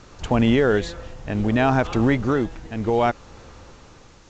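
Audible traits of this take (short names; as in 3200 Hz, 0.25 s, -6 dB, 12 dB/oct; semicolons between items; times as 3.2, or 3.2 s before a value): tremolo triangle 0.65 Hz, depth 65%; a quantiser's noise floor 10-bit, dither triangular; A-law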